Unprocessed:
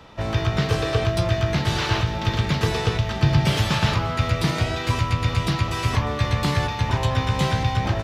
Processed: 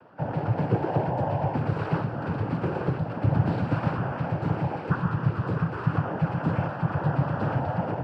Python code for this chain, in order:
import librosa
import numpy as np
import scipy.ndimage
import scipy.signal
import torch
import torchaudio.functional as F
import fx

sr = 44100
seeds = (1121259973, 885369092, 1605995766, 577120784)

y = scipy.signal.sosfilt(scipy.signal.cheby1(2, 1.0, 880.0, 'lowpass', fs=sr, output='sos'), x)
y = fx.noise_vocoder(y, sr, seeds[0], bands=8)
y = F.gain(torch.from_numpy(y), -2.0).numpy()